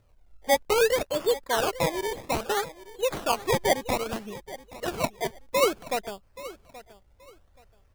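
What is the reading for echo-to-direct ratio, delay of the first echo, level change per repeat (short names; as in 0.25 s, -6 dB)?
-17.0 dB, 0.827 s, -12.5 dB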